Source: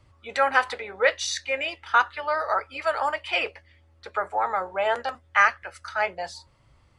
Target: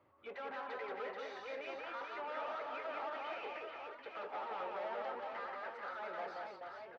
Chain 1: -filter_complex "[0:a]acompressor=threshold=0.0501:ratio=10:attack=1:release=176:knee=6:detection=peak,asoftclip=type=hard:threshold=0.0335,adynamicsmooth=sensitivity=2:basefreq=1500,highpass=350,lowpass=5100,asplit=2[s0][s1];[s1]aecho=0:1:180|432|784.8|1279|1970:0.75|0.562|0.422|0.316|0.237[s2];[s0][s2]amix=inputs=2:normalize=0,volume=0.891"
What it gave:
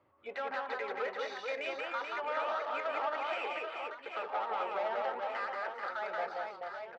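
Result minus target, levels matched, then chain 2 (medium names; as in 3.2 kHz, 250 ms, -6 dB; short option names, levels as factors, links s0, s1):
hard clipper: distortion -8 dB
-filter_complex "[0:a]acompressor=threshold=0.0501:ratio=10:attack=1:release=176:knee=6:detection=peak,asoftclip=type=hard:threshold=0.0112,adynamicsmooth=sensitivity=2:basefreq=1500,highpass=350,lowpass=5100,asplit=2[s0][s1];[s1]aecho=0:1:180|432|784.8|1279|1970:0.75|0.562|0.422|0.316|0.237[s2];[s0][s2]amix=inputs=2:normalize=0,volume=0.891"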